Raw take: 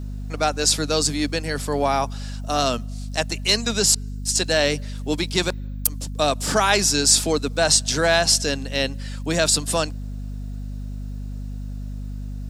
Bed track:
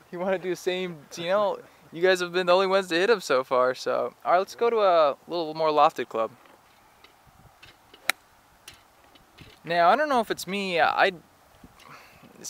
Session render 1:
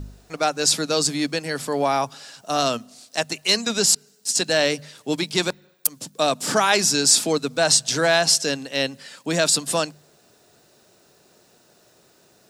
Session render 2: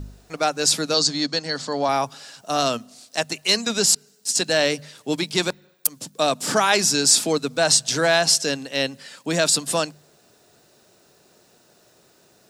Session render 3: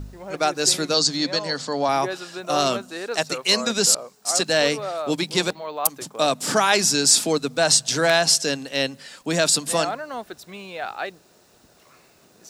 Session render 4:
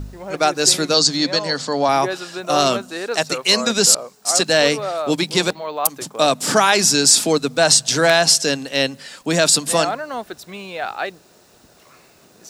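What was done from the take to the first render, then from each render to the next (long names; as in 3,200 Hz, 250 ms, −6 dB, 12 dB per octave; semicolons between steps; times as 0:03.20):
hum removal 50 Hz, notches 5
0:00.94–0:01.89: loudspeaker in its box 140–7,000 Hz, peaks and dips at 380 Hz −7 dB, 2,400 Hz −7 dB, 4,300 Hz +8 dB, 6,700 Hz +4 dB
mix in bed track −9 dB
level +4.5 dB; brickwall limiter −1 dBFS, peak gain reduction 3 dB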